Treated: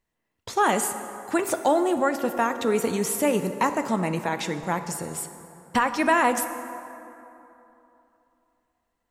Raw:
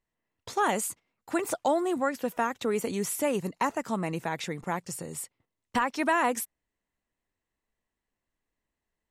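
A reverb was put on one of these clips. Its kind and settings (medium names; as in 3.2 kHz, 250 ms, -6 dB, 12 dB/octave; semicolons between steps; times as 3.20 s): plate-style reverb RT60 3.1 s, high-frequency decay 0.5×, DRR 8.5 dB; trim +4.5 dB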